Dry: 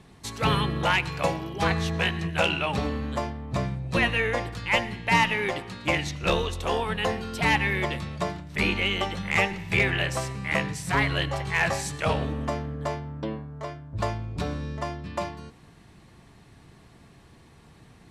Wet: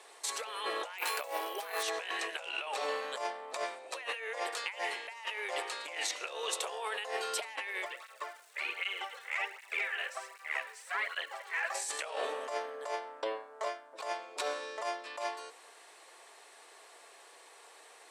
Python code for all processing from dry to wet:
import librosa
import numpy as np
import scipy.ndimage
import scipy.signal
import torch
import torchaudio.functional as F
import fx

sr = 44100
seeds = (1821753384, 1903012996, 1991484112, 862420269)

y = fx.chain(x, sr, fx.resample_bad(factor=3, down='none', up='hold'),
    fx.doubler(ms=29.0, db=-11.5), at=(0.98, 1.83))
y = fx.curve_eq(y, sr, hz=(110.0, 210.0, 960.0, 1400.0, 8200.0), db=(0, -16, -11, -5, -20), at=(7.84, 11.74), fade=0.02)
y = fx.dmg_crackle(y, sr, seeds[0], per_s=510.0, level_db=-49.0, at=(7.84, 11.74), fade=0.02)
y = fx.flanger_cancel(y, sr, hz=1.3, depth_ms=3.7, at=(7.84, 11.74), fade=0.02)
y = scipy.signal.sosfilt(scipy.signal.butter(6, 450.0, 'highpass', fs=sr, output='sos'), y)
y = fx.peak_eq(y, sr, hz=8400.0, db=8.0, octaves=0.59)
y = fx.over_compress(y, sr, threshold_db=-35.0, ratio=-1.0)
y = y * librosa.db_to_amplitude(-2.5)